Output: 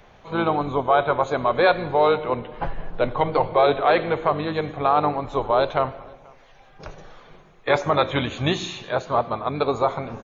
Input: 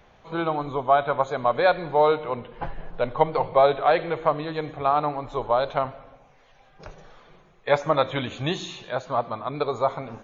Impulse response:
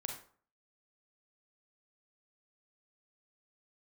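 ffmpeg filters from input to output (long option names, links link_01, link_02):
-filter_complex "[0:a]acrossover=split=1200[link_01][link_02];[link_01]alimiter=limit=-16dB:level=0:latency=1:release=21[link_03];[link_03][link_02]amix=inputs=2:normalize=0,asplit=2[link_04][link_05];[link_05]asetrate=29433,aresample=44100,atempo=1.49831,volume=-11dB[link_06];[link_04][link_06]amix=inputs=2:normalize=0,asplit=2[link_07][link_08];[link_08]adelay=484,volume=-27dB,highshelf=frequency=4000:gain=-10.9[link_09];[link_07][link_09]amix=inputs=2:normalize=0,volume=4dB"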